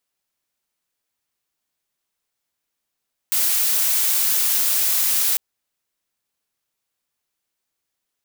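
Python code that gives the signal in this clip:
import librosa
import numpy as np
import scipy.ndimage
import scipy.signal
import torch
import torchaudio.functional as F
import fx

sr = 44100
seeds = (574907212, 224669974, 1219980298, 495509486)

y = fx.noise_colour(sr, seeds[0], length_s=2.05, colour='blue', level_db=-19.0)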